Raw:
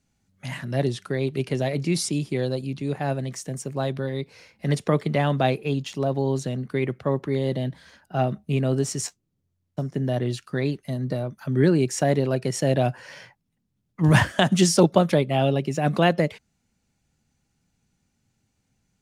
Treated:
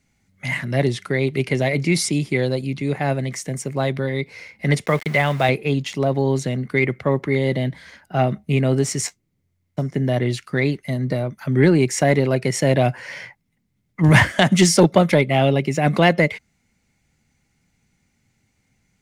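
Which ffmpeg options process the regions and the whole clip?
ffmpeg -i in.wav -filter_complex "[0:a]asettb=1/sr,asplit=3[link_01][link_02][link_03];[link_01]atrim=end=4.864[link_04];[link_02]atrim=start=4.86:end=5.49,asetpts=PTS-STARTPTS,afade=type=in:duration=0.004:curve=qsin,afade=type=out:start_time=0.626:duration=0.004:curve=qsin,highpass=76,equalizer=frequency=260:width_type=o:width=1.2:gain=-8.5,aeval=exprs='val(0)*gte(abs(val(0)),0.0133)':channel_layout=same[link_05];[link_03]atrim=start=5.486[link_06];[link_04][link_05]acrossfade=duration=0.004:curve1=hsin:curve2=qsin[link_07];[link_07][link_06]acrossfade=duration=0.004:curve1=qsin:curve2=hsin,equalizer=frequency=2100:width=5.7:gain=12.5,acontrast=45,volume=-1dB" out.wav

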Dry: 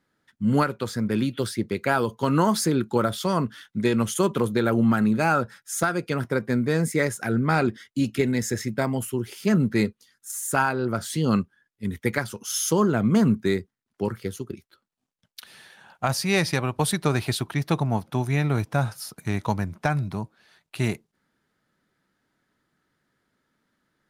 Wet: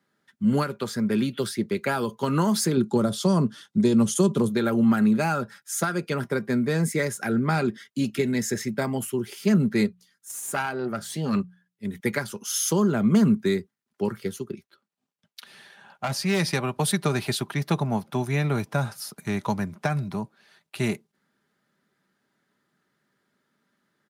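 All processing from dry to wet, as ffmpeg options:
ffmpeg -i in.wav -filter_complex "[0:a]asettb=1/sr,asplit=3[link_01][link_02][link_03];[link_01]atrim=end=2.774[link_04];[link_02]atrim=start=2.77:end=4.49,asetpts=PTS-STARTPTS,afade=type=in:duration=0.004:curve=qsin,afade=type=out:start_time=1.716:duration=0.004:curve=qsin,lowpass=9100,equalizer=frequency=2000:width_type=o:width=1.7:gain=-11.5,acontrast=31[link_05];[link_03]atrim=start=4.486[link_06];[link_04][link_05]acrossfade=duration=0.004:curve1=hsin:curve2=qsin[link_07];[link_07][link_06]acrossfade=duration=0.004:curve1=qsin:curve2=hsin,asettb=1/sr,asplit=3[link_08][link_09][link_10];[link_08]atrim=end=9.864[link_11];[link_09]atrim=start=9.86:end=12,asetpts=PTS-STARTPTS,afade=type=in:duration=0.004:curve=qsin,afade=type=out:start_time=2.136:duration=0.004:curve=qsin,aeval=exprs='(tanh(5.01*val(0)+0.65)-tanh(0.65))/5.01':channel_layout=same,bandreject=frequency=60:width_type=h:width=6,bandreject=frequency=120:width_type=h:width=6,bandreject=frequency=180:width_type=h:width=6[link_12];[link_10]atrim=start=11.996[link_13];[link_11][link_12]acrossfade=duration=0.004:curve1=hsin:curve2=qsin[link_14];[link_14][link_13]acrossfade=duration=0.004:curve1=qsin:curve2=hsin,asettb=1/sr,asplit=3[link_15][link_16][link_17];[link_15]atrim=end=14.494[link_18];[link_16]atrim=start=14.49:end=16.4,asetpts=PTS-STARTPTS,afade=type=in:duration=0.004:curve=qsin,afade=type=out:start_time=1.906:duration=0.004:curve=qsin,deesser=0.25,highshelf=frequency=7000:gain=-7,asoftclip=type=hard:threshold=-20dB[link_19];[link_17]atrim=start=16.396[link_20];[link_18][link_19]acrossfade=duration=0.004:curve1=hsin:curve2=qsin[link_21];[link_21][link_20]acrossfade=duration=0.004:curve1=qsin:curve2=hsin,highpass=110,aecho=1:1:5:0.33,acrossover=split=260|3000[link_22][link_23][link_24];[link_23]acompressor=threshold=-23dB:ratio=6[link_25];[link_22][link_25][link_24]amix=inputs=3:normalize=0" out.wav

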